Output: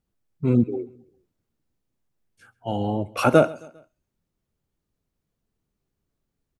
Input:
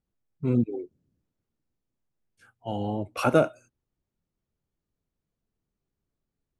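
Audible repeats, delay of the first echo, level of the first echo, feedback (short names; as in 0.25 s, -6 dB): 2, 0.133 s, -23.0 dB, 48%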